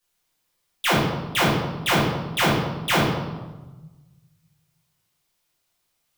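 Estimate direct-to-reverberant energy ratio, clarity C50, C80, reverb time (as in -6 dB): -9.0 dB, 1.5 dB, 4.0 dB, 1.2 s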